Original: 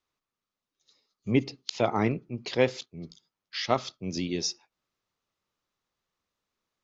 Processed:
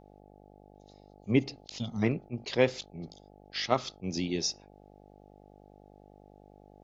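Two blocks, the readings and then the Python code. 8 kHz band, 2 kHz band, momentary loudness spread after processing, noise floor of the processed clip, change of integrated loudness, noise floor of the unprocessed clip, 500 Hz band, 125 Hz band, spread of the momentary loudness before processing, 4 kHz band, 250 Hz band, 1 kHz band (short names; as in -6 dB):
n/a, -1.5 dB, 17 LU, -56 dBFS, -2.0 dB, under -85 dBFS, -2.0 dB, -1.0 dB, 16 LU, -1.5 dB, -1.5 dB, -4.5 dB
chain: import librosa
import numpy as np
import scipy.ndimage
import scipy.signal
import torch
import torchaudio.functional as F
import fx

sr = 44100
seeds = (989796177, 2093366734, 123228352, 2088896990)

y = fx.spec_box(x, sr, start_s=1.78, length_s=0.25, low_hz=270.0, high_hz=2800.0, gain_db=-23)
y = fx.dmg_buzz(y, sr, base_hz=50.0, harmonics=17, level_db=-55.0, tilt_db=-1, odd_only=False)
y = fx.attack_slew(y, sr, db_per_s=470.0)
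y = y * librosa.db_to_amplitude(-1.0)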